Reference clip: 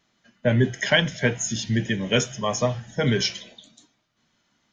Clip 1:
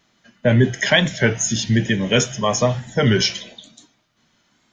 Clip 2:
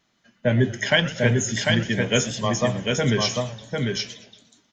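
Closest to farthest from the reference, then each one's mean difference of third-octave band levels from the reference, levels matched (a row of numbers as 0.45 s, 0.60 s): 1, 2; 1.5 dB, 5.5 dB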